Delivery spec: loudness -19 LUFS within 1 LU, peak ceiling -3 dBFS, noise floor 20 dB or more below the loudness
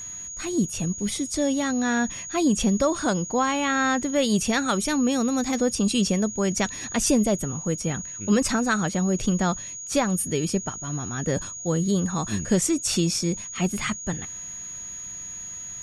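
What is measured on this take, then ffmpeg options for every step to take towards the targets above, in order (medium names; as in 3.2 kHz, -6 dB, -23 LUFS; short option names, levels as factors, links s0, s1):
steady tone 6.7 kHz; tone level -34 dBFS; loudness -24.5 LUFS; peak level -10.5 dBFS; loudness target -19.0 LUFS
-> -af "bandreject=f=6700:w=30"
-af "volume=1.88"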